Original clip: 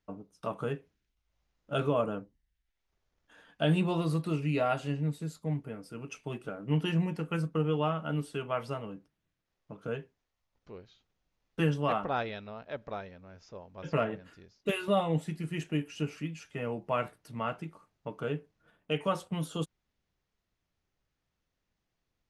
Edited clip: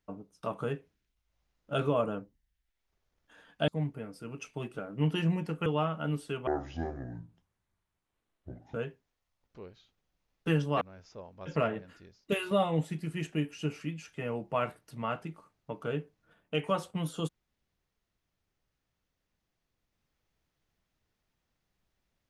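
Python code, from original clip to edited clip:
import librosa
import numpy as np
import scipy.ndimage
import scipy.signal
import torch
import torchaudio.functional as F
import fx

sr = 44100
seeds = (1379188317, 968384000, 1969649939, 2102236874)

y = fx.edit(x, sr, fx.cut(start_s=3.68, length_s=1.7),
    fx.cut(start_s=7.36, length_s=0.35),
    fx.speed_span(start_s=8.52, length_s=1.34, speed=0.59),
    fx.cut(start_s=11.93, length_s=1.25), tone=tone)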